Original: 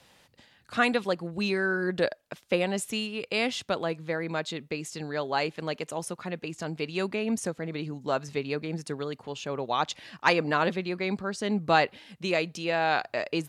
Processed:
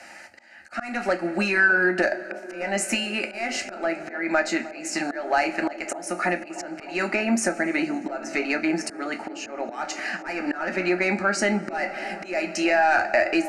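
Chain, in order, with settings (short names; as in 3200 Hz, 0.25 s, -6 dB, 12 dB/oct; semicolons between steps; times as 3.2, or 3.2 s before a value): low shelf 93 Hz -6.5 dB; overdrive pedal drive 17 dB, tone 4800 Hz, clips at -7.5 dBFS; on a send at -5 dB: reverb, pre-delay 3 ms; on the sum: compressor 4:1, threshold -25 dBFS, peak gain reduction 11 dB; LPF 8300 Hz 12 dB/oct; fixed phaser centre 700 Hz, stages 8; auto swell 0.257 s; band-limited delay 0.308 s, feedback 82%, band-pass 520 Hz, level -15 dB; gain +9 dB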